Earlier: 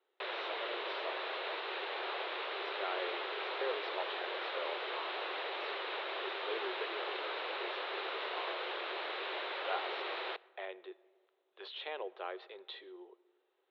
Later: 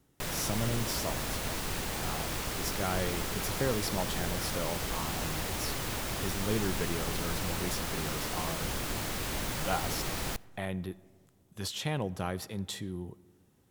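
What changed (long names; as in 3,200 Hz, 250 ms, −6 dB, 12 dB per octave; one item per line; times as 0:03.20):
speech +4.5 dB
master: remove Chebyshev band-pass filter 370–3,900 Hz, order 5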